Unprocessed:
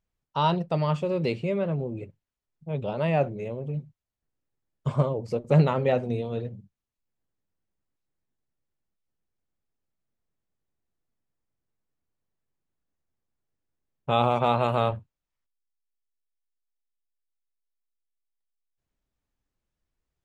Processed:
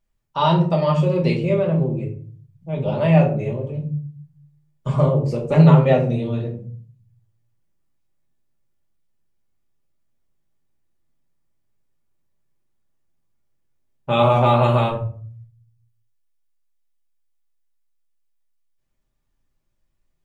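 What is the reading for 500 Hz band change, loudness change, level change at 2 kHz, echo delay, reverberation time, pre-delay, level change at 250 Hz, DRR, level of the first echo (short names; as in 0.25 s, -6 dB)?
+6.5 dB, +8.0 dB, +6.0 dB, none, 0.45 s, 3 ms, +9.5 dB, -1.5 dB, none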